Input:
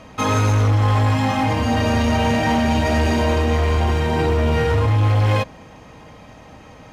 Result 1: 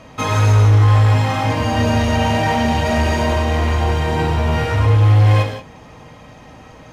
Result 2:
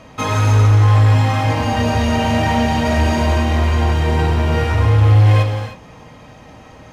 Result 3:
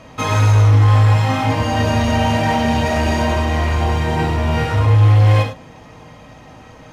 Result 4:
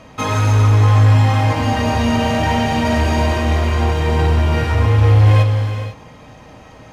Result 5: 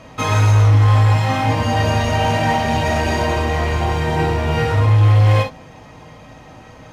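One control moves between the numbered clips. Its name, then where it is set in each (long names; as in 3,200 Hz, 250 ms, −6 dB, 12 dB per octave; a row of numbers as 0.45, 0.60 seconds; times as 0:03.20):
reverb whose tail is shaped and stops, gate: 200, 340, 120, 520, 80 milliseconds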